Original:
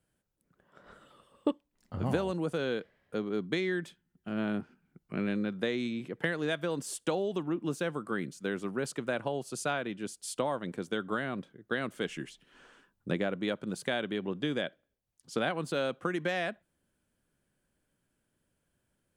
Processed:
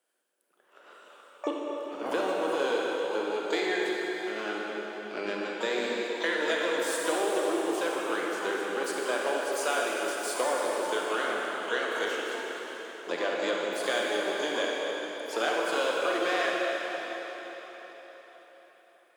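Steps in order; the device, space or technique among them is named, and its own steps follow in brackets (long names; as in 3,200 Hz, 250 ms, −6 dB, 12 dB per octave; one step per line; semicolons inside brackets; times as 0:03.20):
shimmer-style reverb (pitch-shifted copies added +12 semitones −11 dB; convolution reverb RT60 4.7 s, pre-delay 29 ms, DRR −3 dB)
high-pass filter 360 Hz 24 dB per octave
level +1.5 dB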